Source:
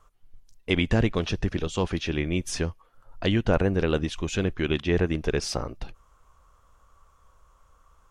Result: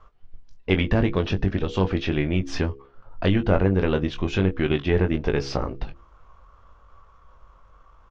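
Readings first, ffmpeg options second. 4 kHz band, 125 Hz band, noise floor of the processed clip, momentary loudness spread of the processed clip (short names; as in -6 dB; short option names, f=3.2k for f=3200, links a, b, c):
-1.0 dB, +3.5 dB, -54 dBFS, 9 LU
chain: -filter_complex "[0:a]aeval=exprs='if(lt(val(0),0),0.708*val(0),val(0))':c=same,lowpass=f=5.4k:w=0.5412,lowpass=f=5.4k:w=1.3066,highshelf=f=3.7k:g=-10,bandreject=f=68.67:t=h:w=4,bandreject=f=137.34:t=h:w=4,bandreject=f=206.01:t=h:w=4,bandreject=f=274.68:t=h:w=4,bandreject=f=343.35:t=h:w=4,bandreject=f=412.02:t=h:w=4,bandreject=f=480.69:t=h:w=4,asplit=2[a][b];[b]acompressor=threshold=-30dB:ratio=6,volume=3dB[c];[a][c]amix=inputs=2:normalize=0,asplit=2[d][e];[e]adelay=21,volume=-7.5dB[f];[d][f]amix=inputs=2:normalize=0"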